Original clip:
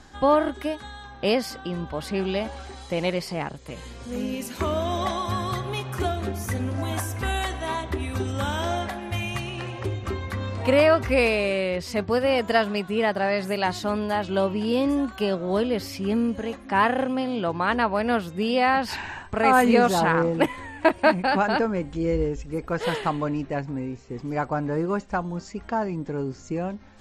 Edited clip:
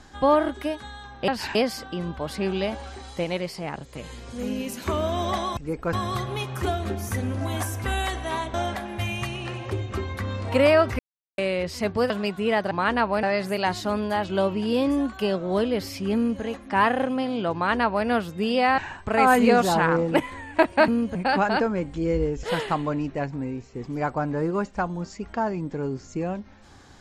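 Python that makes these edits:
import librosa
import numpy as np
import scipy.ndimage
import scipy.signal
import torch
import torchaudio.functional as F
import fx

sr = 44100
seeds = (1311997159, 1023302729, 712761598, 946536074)

y = fx.edit(x, sr, fx.clip_gain(start_s=2.97, length_s=0.5, db=-3.0),
    fx.cut(start_s=7.91, length_s=0.76),
    fx.silence(start_s=11.12, length_s=0.39),
    fx.cut(start_s=12.23, length_s=0.38),
    fx.duplicate(start_s=16.14, length_s=0.27, to_s=21.14),
    fx.duplicate(start_s=17.53, length_s=0.52, to_s=13.22),
    fx.move(start_s=18.77, length_s=0.27, to_s=1.28),
    fx.move(start_s=22.42, length_s=0.36, to_s=5.3), tone=tone)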